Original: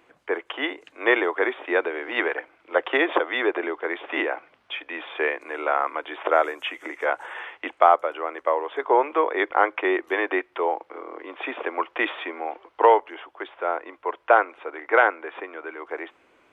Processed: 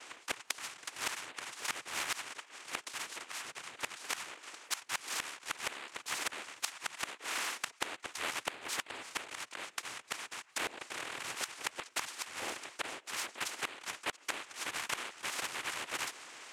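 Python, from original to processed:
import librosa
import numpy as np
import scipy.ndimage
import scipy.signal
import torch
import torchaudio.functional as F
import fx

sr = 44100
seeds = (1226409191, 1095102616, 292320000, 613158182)

y = fx.env_lowpass(x, sr, base_hz=1900.0, full_db=-15.0)
y = scipy.signal.sosfilt(scipy.signal.butter(2, 1300.0, 'highpass', fs=sr, output='sos'), y)
y = fx.high_shelf(y, sr, hz=2300.0, db=9.5)
y = fx.noise_vocoder(y, sr, seeds[0], bands=4)
y = fx.gate_flip(y, sr, shuts_db=-20.0, range_db=-25)
y = fx.spectral_comp(y, sr, ratio=2.0)
y = F.gain(torch.from_numpy(y), 1.0).numpy()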